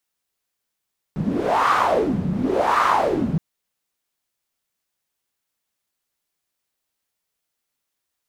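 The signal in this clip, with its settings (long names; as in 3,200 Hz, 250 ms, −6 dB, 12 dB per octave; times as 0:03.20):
wind from filtered noise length 2.22 s, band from 170 Hz, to 1,200 Hz, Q 4.7, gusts 2, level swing 5 dB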